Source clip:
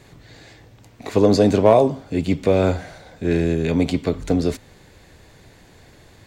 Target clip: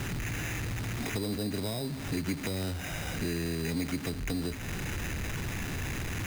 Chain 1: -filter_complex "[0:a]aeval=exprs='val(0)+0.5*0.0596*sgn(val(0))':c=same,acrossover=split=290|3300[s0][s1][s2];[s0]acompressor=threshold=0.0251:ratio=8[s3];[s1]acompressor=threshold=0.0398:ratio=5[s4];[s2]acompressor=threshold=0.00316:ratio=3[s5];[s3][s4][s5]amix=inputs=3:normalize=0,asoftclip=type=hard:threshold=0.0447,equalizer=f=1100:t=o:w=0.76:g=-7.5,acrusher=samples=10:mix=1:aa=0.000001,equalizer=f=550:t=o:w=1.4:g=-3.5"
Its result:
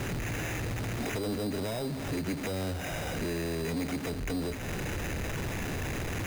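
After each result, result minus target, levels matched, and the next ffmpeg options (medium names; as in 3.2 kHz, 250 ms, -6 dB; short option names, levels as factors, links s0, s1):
hard clipper: distortion +15 dB; 500 Hz band +3.5 dB
-filter_complex "[0:a]aeval=exprs='val(0)+0.5*0.0596*sgn(val(0))':c=same,acrossover=split=290|3300[s0][s1][s2];[s0]acompressor=threshold=0.0251:ratio=8[s3];[s1]acompressor=threshold=0.0398:ratio=5[s4];[s2]acompressor=threshold=0.00316:ratio=3[s5];[s3][s4][s5]amix=inputs=3:normalize=0,asoftclip=type=hard:threshold=0.106,equalizer=f=1100:t=o:w=0.76:g=-7.5,acrusher=samples=10:mix=1:aa=0.000001,equalizer=f=550:t=o:w=1.4:g=-3.5"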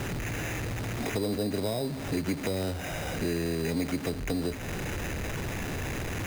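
500 Hz band +4.0 dB
-filter_complex "[0:a]aeval=exprs='val(0)+0.5*0.0596*sgn(val(0))':c=same,acrossover=split=290|3300[s0][s1][s2];[s0]acompressor=threshold=0.0251:ratio=8[s3];[s1]acompressor=threshold=0.0398:ratio=5[s4];[s2]acompressor=threshold=0.00316:ratio=3[s5];[s3][s4][s5]amix=inputs=3:normalize=0,asoftclip=type=hard:threshold=0.106,equalizer=f=1100:t=o:w=0.76:g=-7.5,acrusher=samples=10:mix=1:aa=0.000001,equalizer=f=550:t=o:w=1.4:g=-11.5"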